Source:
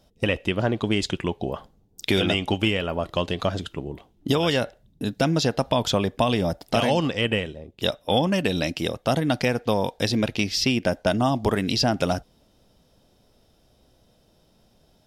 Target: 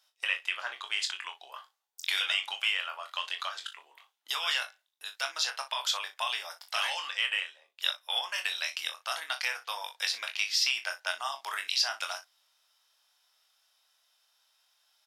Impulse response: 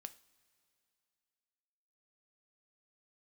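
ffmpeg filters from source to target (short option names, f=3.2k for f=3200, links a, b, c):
-filter_complex "[0:a]highpass=f=1.1k:w=0.5412,highpass=f=1.1k:w=1.3066,asplit=2[a][b];[b]aecho=0:1:22|38|60:0.473|0.251|0.178[c];[a][c]amix=inputs=2:normalize=0,volume=-3dB"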